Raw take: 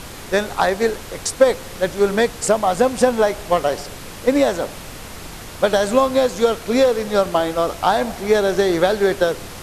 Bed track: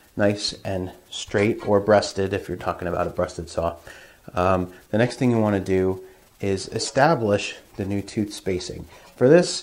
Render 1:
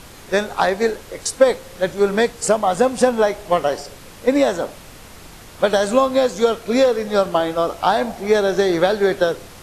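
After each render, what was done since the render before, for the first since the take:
noise reduction from a noise print 6 dB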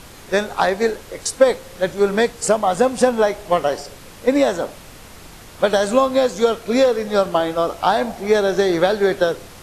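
no processing that can be heard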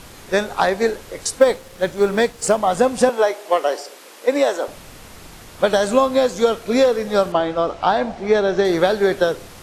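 0:01.39–0:02.58: mu-law and A-law mismatch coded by A
0:03.09–0:04.68: high-pass filter 320 Hz 24 dB per octave
0:07.32–0:08.65: high-frequency loss of the air 100 metres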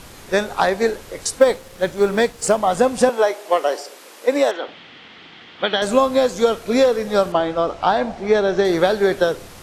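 0:04.51–0:05.82: loudspeaker in its box 230–4,000 Hz, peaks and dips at 410 Hz −3 dB, 590 Hz −8 dB, 1,000 Hz −4 dB, 2,000 Hz +5 dB, 3,200 Hz +9 dB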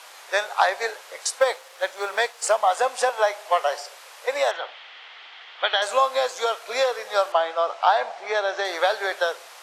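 high-pass filter 640 Hz 24 dB per octave
high-shelf EQ 8,500 Hz −7 dB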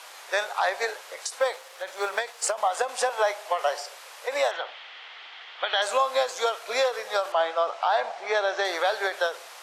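brickwall limiter −13.5 dBFS, peak gain reduction 8.5 dB
every ending faded ahead of time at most 190 dB per second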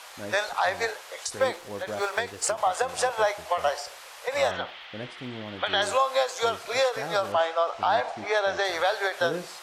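mix in bed track −18.5 dB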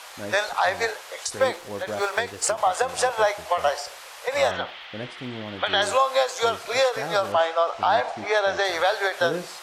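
level +3 dB

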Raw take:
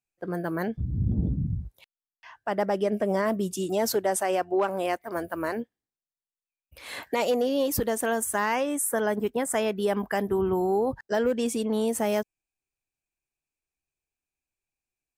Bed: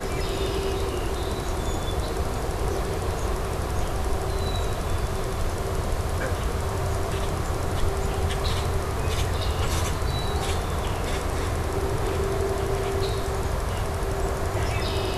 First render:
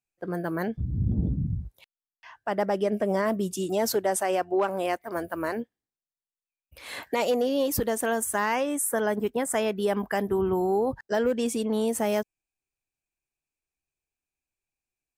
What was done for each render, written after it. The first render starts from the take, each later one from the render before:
no processing that can be heard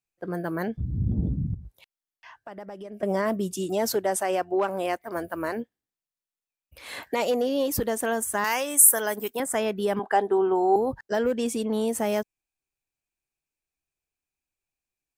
0:01.54–0:03.03: downward compressor, threshold −37 dBFS
0:08.44–0:09.40: RIAA equalisation recording
0:09.99–0:10.76: loudspeaker in its box 330–8,800 Hz, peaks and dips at 400 Hz +6 dB, 800 Hz +10 dB, 1,500 Hz +4 dB, 2,200 Hz −5 dB, 3,800 Hz +6 dB, 5,400 Hz −8 dB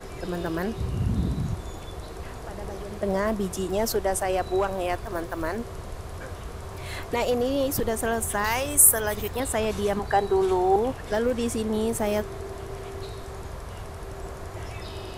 mix in bed −10.5 dB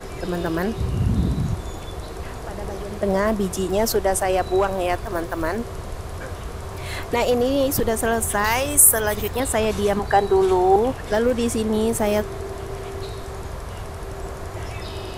level +5 dB
brickwall limiter −1 dBFS, peak gain reduction 2.5 dB

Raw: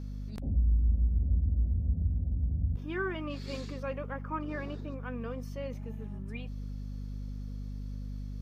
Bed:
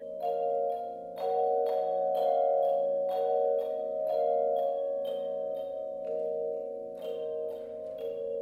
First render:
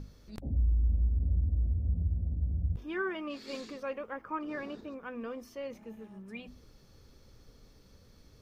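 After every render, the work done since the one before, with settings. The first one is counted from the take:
mains-hum notches 50/100/150/200/250 Hz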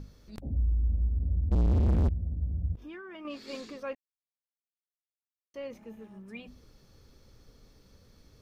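0:01.51–0:02.09: leveller curve on the samples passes 5
0:02.75–0:03.25: downward compressor 16 to 1, threshold −40 dBFS
0:03.95–0:05.54: silence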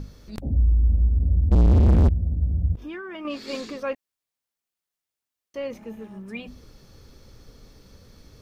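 level +8.5 dB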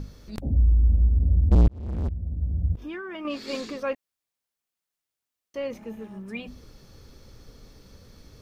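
0:01.68–0:02.91: fade in

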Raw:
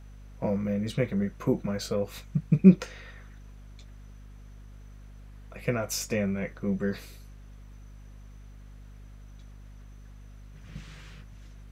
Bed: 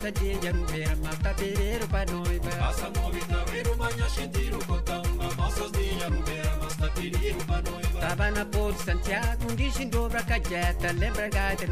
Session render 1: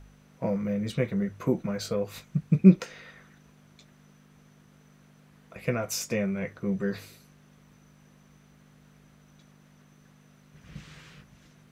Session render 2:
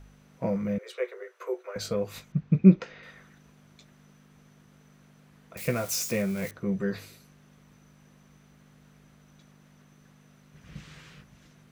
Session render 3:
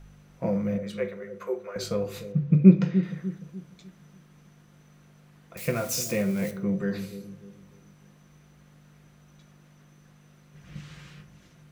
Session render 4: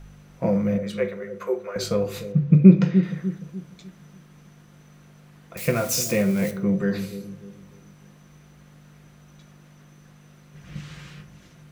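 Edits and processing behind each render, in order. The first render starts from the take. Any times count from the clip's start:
hum removal 50 Hz, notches 2
0:00.78–0:01.76: Chebyshev high-pass with heavy ripple 360 Hz, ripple 6 dB; 0:02.32–0:03.03: high-frequency loss of the air 170 metres; 0:05.57–0:06.51: spike at every zero crossing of −31 dBFS
bucket-brigade delay 297 ms, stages 1,024, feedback 39%, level −11 dB; rectangular room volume 660 cubic metres, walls furnished, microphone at 0.88 metres
level +5 dB; brickwall limiter −1 dBFS, peak gain reduction 3 dB

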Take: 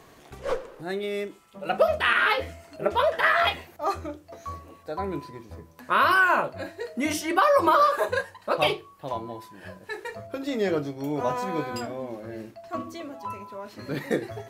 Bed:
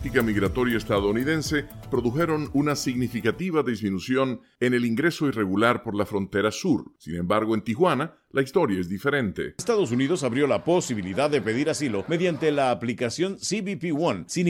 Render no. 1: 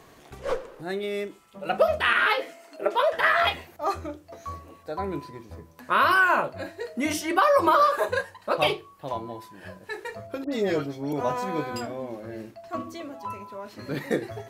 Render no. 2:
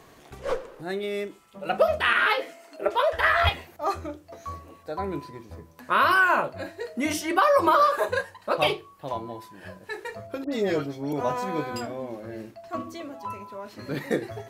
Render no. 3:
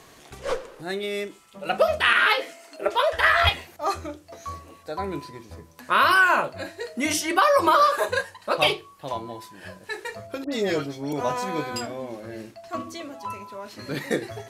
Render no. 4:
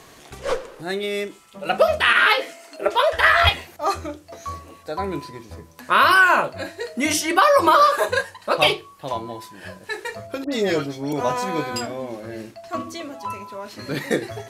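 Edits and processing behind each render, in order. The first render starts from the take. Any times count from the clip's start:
0:02.26–0:03.13: high-pass filter 270 Hz 24 dB per octave; 0:10.44–0:11.13: all-pass dispersion highs, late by 82 ms, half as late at 1,800 Hz
0:02.88–0:03.49: low shelf with overshoot 110 Hz +13.5 dB, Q 3
low-pass filter 12,000 Hz 12 dB per octave; high-shelf EQ 2,300 Hz +8 dB
level +3.5 dB; brickwall limiter −3 dBFS, peak gain reduction 2.5 dB

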